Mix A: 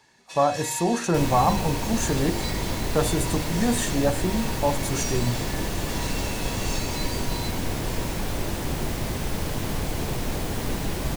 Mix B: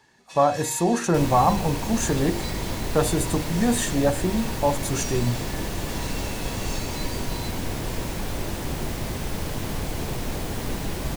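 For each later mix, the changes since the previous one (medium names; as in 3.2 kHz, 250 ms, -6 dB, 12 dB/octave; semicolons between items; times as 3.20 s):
speech +3.5 dB; reverb: off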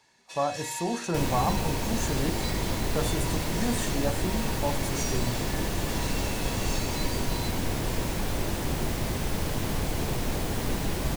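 speech -8.5 dB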